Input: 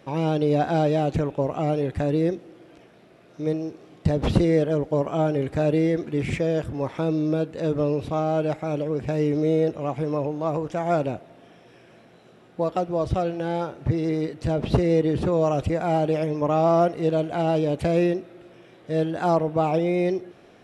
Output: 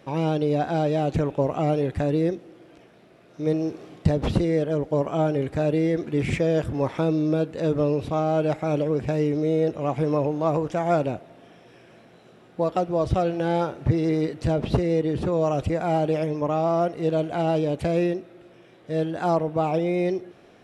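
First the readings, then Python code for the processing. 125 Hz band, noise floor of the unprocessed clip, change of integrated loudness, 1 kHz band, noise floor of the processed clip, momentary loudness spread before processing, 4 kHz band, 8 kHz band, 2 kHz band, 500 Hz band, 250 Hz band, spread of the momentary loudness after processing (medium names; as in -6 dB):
0.0 dB, -52 dBFS, -0.5 dB, -0.5 dB, -53 dBFS, 6 LU, -0.5 dB, no reading, 0.0 dB, -0.5 dB, -0.5 dB, 4 LU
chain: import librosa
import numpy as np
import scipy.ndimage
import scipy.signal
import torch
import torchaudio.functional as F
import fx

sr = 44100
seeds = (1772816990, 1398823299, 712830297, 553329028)

y = fx.rider(x, sr, range_db=10, speed_s=0.5)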